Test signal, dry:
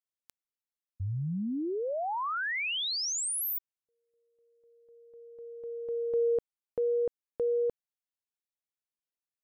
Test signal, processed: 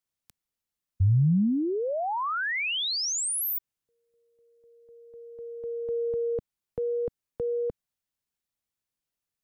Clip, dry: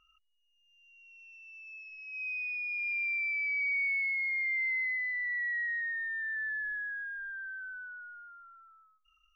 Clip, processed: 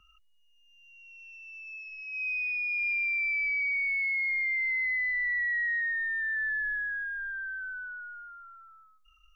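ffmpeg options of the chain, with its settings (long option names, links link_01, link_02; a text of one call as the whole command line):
ffmpeg -i in.wav -filter_complex "[0:a]bass=frequency=250:gain=8,treble=frequency=4000:gain=1,acrossover=split=220[link_01][link_02];[link_02]alimiter=level_in=6.5dB:limit=-24dB:level=0:latency=1:release=17,volume=-6.5dB[link_03];[link_01][link_03]amix=inputs=2:normalize=0,acontrast=67,volume=-2dB" out.wav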